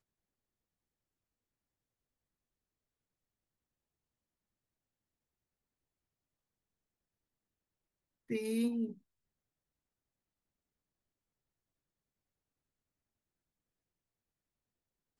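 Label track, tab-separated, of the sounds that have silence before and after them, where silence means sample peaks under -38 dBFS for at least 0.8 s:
8.300000	8.920000	sound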